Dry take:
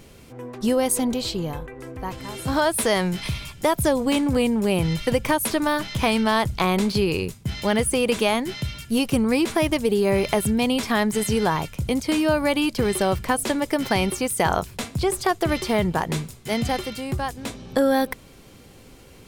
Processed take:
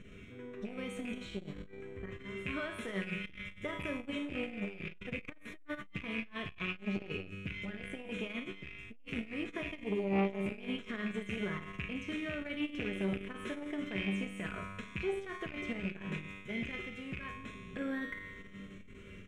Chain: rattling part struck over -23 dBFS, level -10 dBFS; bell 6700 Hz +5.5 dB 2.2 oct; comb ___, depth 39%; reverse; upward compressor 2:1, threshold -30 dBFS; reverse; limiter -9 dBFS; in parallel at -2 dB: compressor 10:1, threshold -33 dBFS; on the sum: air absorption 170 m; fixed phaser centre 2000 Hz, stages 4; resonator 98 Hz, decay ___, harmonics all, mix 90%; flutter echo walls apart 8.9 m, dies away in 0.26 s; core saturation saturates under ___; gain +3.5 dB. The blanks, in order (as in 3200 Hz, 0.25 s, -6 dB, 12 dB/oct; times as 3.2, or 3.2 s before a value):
4.8 ms, 1.6 s, 520 Hz